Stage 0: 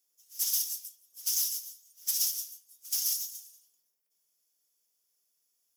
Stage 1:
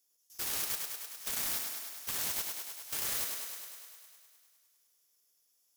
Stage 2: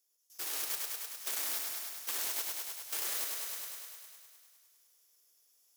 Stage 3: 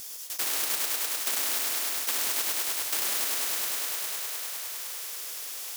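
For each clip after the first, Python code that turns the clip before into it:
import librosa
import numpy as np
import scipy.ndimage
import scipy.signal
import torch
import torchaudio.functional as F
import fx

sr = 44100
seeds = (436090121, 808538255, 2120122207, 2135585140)

y1 = fx.self_delay(x, sr, depth_ms=0.25)
y1 = fx.level_steps(y1, sr, step_db=20)
y1 = fx.echo_thinned(y1, sr, ms=102, feedback_pct=74, hz=200.0, wet_db=-4.5)
y1 = y1 * librosa.db_to_amplitude(4.5)
y2 = scipy.signal.sosfilt(scipy.signal.butter(6, 290.0, 'highpass', fs=sr, output='sos'), y1)
y2 = fx.rider(y2, sr, range_db=4, speed_s=0.5)
y3 = fx.highpass(y2, sr, hz=770.0, slope=6)
y3 = fx.spectral_comp(y3, sr, ratio=4.0)
y3 = y3 * librosa.db_to_amplitude(7.0)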